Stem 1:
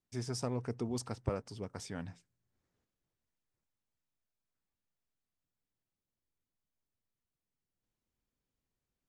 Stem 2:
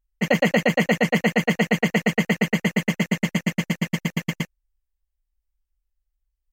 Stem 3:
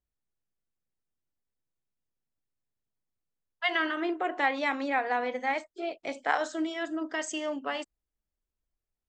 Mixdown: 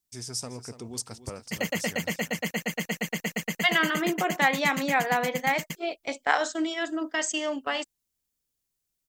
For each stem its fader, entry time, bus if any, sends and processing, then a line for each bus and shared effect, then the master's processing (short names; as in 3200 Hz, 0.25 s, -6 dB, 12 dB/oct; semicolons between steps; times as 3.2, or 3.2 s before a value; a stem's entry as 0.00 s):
-3.5 dB, 0.00 s, no send, echo send -12.5 dB, high shelf 4200 Hz +10 dB
-12.0 dB, 1.30 s, no send, no echo send, high shelf 5400 Hz +7.5 dB
+2.5 dB, 0.00 s, no send, no echo send, gate -36 dBFS, range -16 dB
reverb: off
echo: echo 0.287 s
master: high shelf 3000 Hz +8.5 dB